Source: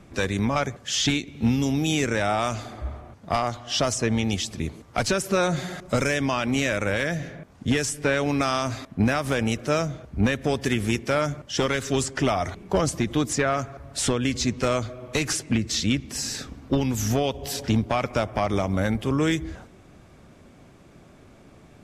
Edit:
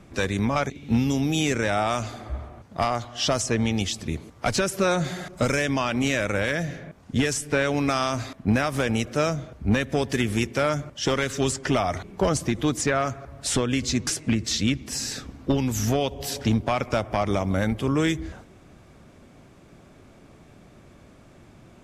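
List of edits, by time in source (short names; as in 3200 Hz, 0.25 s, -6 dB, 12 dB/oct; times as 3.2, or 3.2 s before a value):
0.7–1.22 cut
14.59–15.3 cut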